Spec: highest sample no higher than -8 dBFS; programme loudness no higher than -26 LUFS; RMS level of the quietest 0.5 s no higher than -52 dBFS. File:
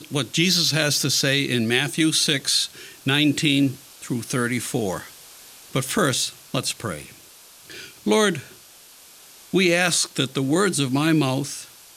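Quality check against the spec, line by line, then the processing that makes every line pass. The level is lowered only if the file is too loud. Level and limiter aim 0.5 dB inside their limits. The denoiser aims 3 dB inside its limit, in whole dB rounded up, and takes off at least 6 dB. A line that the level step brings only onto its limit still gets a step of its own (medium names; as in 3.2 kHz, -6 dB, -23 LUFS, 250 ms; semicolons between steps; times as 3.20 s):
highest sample -4.0 dBFS: fail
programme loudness -21.0 LUFS: fail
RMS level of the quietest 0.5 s -48 dBFS: fail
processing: trim -5.5 dB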